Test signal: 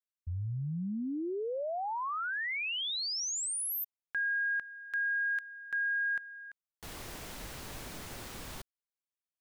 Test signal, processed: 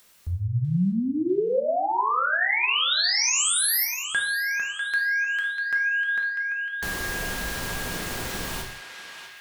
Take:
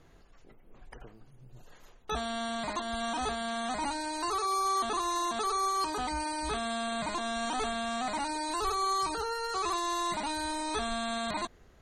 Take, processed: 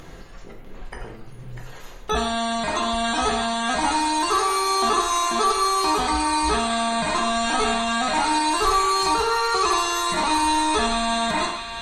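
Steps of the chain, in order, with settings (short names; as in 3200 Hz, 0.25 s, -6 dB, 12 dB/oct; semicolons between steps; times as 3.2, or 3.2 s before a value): in parallel at -1 dB: upward compressor, threshold -35 dBFS; on the sum: narrowing echo 0.646 s, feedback 66%, band-pass 2400 Hz, level -6 dB; non-linear reverb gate 0.22 s falling, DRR 0.5 dB; gain +3 dB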